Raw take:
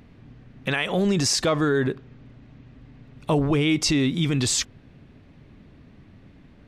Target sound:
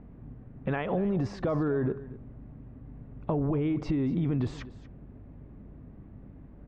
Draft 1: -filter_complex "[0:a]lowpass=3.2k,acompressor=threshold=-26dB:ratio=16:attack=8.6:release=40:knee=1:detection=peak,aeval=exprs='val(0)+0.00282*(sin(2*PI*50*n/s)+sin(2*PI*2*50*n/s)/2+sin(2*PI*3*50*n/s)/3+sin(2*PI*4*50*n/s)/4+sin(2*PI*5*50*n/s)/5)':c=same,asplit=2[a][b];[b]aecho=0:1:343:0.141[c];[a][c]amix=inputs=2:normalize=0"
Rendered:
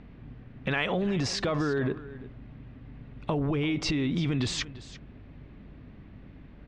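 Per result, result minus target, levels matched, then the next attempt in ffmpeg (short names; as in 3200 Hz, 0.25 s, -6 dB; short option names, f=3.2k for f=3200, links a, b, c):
4000 Hz band +17.5 dB; echo 0.104 s late
-filter_complex "[0:a]lowpass=1k,acompressor=threshold=-26dB:ratio=16:attack=8.6:release=40:knee=1:detection=peak,aeval=exprs='val(0)+0.00282*(sin(2*PI*50*n/s)+sin(2*PI*2*50*n/s)/2+sin(2*PI*3*50*n/s)/3+sin(2*PI*4*50*n/s)/4+sin(2*PI*5*50*n/s)/5)':c=same,asplit=2[a][b];[b]aecho=0:1:343:0.141[c];[a][c]amix=inputs=2:normalize=0"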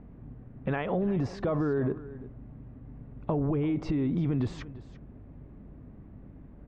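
echo 0.104 s late
-filter_complex "[0:a]lowpass=1k,acompressor=threshold=-26dB:ratio=16:attack=8.6:release=40:knee=1:detection=peak,aeval=exprs='val(0)+0.00282*(sin(2*PI*50*n/s)+sin(2*PI*2*50*n/s)/2+sin(2*PI*3*50*n/s)/3+sin(2*PI*4*50*n/s)/4+sin(2*PI*5*50*n/s)/5)':c=same,asplit=2[a][b];[b]aecho=0:1:239:0.141[c];[a][c]amix=inputs=2:normalize=0"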